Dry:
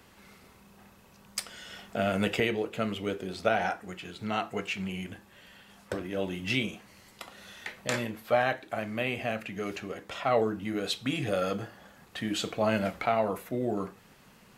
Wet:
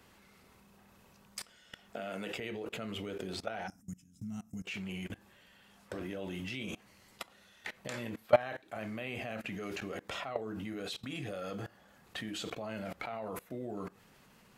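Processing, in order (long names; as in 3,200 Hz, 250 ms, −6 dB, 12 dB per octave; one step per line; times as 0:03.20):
0:01.94–0:02.34: high-pass filter 220 Hz 12 dB per octave
0:03.68–0:04.65: gain on a spectral selection 290–5,000 Hz −25 dB
output level in coarse steps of 22 dB
level +4 dB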